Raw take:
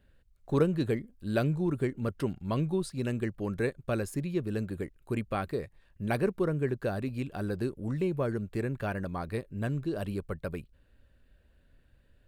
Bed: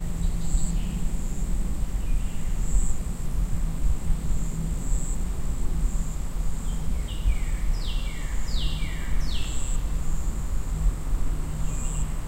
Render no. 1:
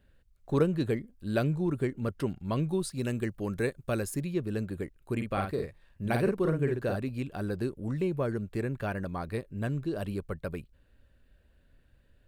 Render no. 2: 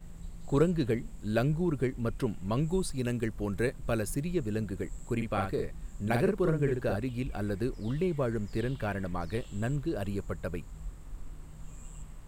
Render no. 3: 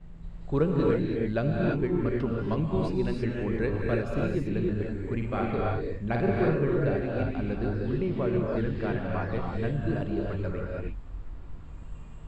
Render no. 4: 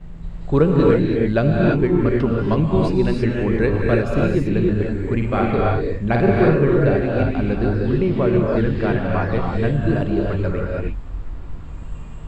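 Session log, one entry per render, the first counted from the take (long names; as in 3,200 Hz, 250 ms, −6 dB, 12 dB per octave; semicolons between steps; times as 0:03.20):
0:02.68–0:04.30: high-shelf EQ 5,600 Hz +7 dB; 0:05.15–0:06.96: double-tracking delay 50 ms −4.5 dB
mix in bed −17.5 dB
high-frequency loss of the air 210 metres; reverb whose tail is shaped and stops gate 350 ms rising, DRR −2 dB
level +10 dB; brickwall limiter −3 dBFS, peak gain reduction 1 dB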